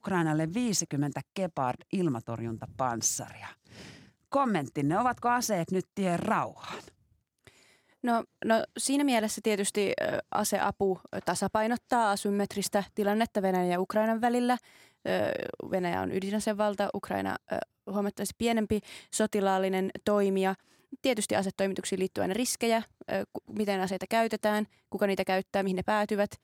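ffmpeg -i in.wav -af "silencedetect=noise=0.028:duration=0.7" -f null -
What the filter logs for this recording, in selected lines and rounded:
silence_start: 3.46
silence_end: 4.33 | silence_duration: 0.87
silence_start: 6.75
silence_end: 8.04 | silence_duration: 1.29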